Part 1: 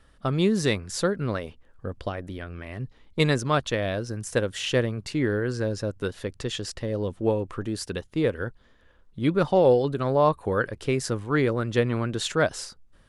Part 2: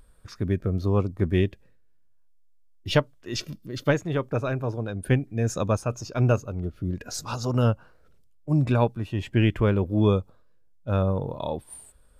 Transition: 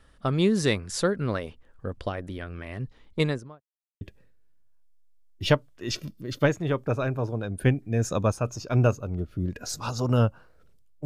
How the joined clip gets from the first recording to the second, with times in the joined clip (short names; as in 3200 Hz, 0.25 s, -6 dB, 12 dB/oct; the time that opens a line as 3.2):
part 1
3.05–3.63 studio fade out
3.63–4.01 mute
4.01 switch to part 2 from 1.46 s